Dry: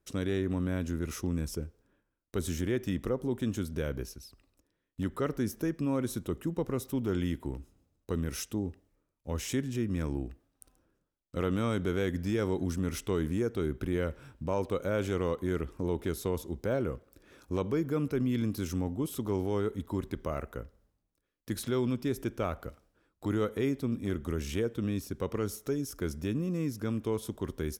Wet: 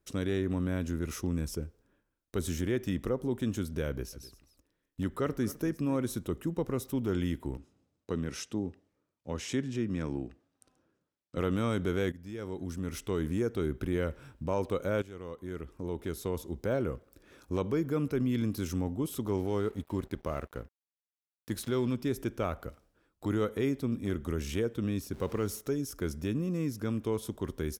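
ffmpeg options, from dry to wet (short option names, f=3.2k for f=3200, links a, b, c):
-filter_complex "[0:a]asplit=3[a][b][c];[a]afade=t=out:st=4.12:d=0.02[d];[b]aecho=1:1:257:0.126,afade=t=in:st=4.12:d=0.02,afade=t=out:st=5.96:d=0.02[e];[c]afade=t=in:st=5.96:d=0.02[f];[d][e][f]amix=inputs=3:normalize=0,asettb=1/sr,asplit=3[g][h][i];[g]atrim=end=7.574[j];[h]atrim=start=7.57:end=11.38,asetpts=PTS-STARTPTS,afade=t=in:d=0.004:c=qsin,afade=t=out:st=3.806:d=0.004:c=qsin,highpass=110,lowpass=6.8k[k];[i]atrim=start=11.376[l];[j][k]acrossfade=d=0.004:c1=hsin:c2=qsin[m];[m][l]acrossfade=d=0.004:c1=qsin:c2=hsin,asettb=1/sr,asplit=3[n][o][p];[n]atrim=end=19.374[q];[o]atrim=start=19.37:end=21.95,asetpts=PTS-STARTPTS,afade=t=in:d=0.004:c=qsin,afade=t=out:st=2.576:d=0.004:c=qsin,aeval=exprs='sgn(val(0))*max(abs(val(0))-0.00211,0)':c=same[r];[p]atrim=start=21.946[s];[q][r]acrossfade=d=0.004:c1=hsin:c2=qsin[t];[t][s]acrossfade=d=0.004:c1=qsin:c2=hsin,asettb=1/sr,asplit=3[u][v][w];[u]atrim=end=25.134[x];[v]atrim=start=25.13:end=25.61,asetpts=PTS-STARTPTS,afade=t=in:d=0.004:c=qsin,afade=t=out:st=0.476:d=0.004:c=qsin,aeval=exprs='val(0)+0.5*0.00422*sgn(val(0))':c=same[y];[w]atrim=start=25.606[z];[x][y]acrossfade=d=0.004:c1=hsin:c2=qsin[aa];[aa][z]acrossfade=d=0.004:c1=qsin:c2=hsin,asplit=3[ab][ac][ad];[ab]atrim=end=12.12,asetpts=PTS-STARTPTS,afade=t=out:st=12.116:d=0.004:c=hsin:silence=0.149624[ae];[ac]atrim=start=12.12:end=15.02,asetpts=PTS-STARTPTS,afade=t=in:d=1.28:silence=0.149624,afade=t=out:st=2.896:d=0.004:c=hsin:silence=0.141254[af];[ad]atrim=start=15.02,asetpts=PTS-STARTPTS,afade=t=in:d=1.68:silence=0.141254[ag];[ae][af][ag]concat=n=3:v=0:a=1"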